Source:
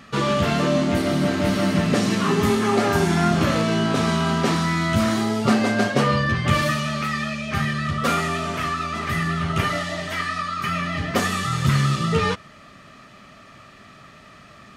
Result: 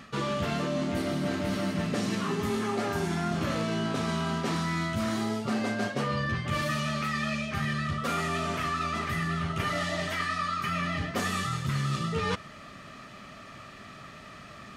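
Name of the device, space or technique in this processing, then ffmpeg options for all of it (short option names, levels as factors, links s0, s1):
compression on the reversed sound: -af "areverse,acompressor=threshold=0.0447:ratio=6,areverse"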